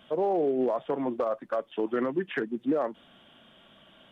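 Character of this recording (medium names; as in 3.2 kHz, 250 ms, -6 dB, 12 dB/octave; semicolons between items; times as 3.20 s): noise floor -58 dBFS; spectral tilt -2.5 dB/octave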